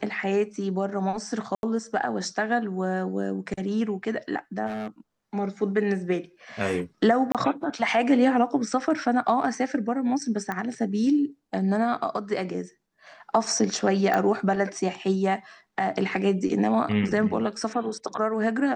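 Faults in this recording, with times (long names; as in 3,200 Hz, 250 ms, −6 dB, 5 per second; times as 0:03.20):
0:01.55–0:01.63: drop-out 81 ms
0:04.66–0:04.88: clipping −28.5 dBFS
0:07.32–0:07.35: drop-out 27 ms
0:10.52: click −17 dBFS
0:14.14: click −13 dBFS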